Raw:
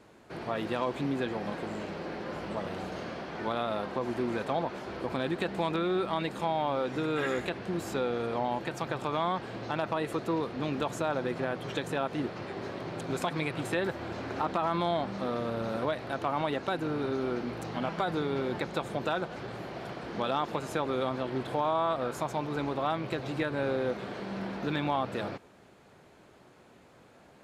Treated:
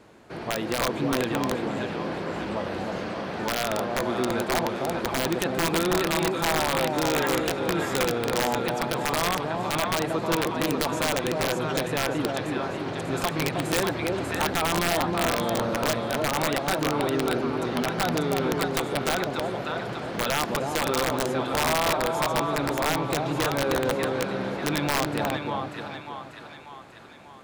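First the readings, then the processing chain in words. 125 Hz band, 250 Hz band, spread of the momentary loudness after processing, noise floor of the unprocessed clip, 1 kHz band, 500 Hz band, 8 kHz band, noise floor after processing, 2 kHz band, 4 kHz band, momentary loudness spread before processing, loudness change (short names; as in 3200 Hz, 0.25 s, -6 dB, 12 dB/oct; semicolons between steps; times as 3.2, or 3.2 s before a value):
+6.0 dB, +5.5 dB, 7 LU, -57 dBFS, +5.5 dB, +5.5 dB, +18.5 dB, -42 dBFS, +9.0 dB, +11.0 dB, 8 LU, +6.5 dB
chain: split-band echo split 870 Hz, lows 0.315 s, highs 0.592 s, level -3 dB; wrapped overs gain 20 dB; gain +4 dB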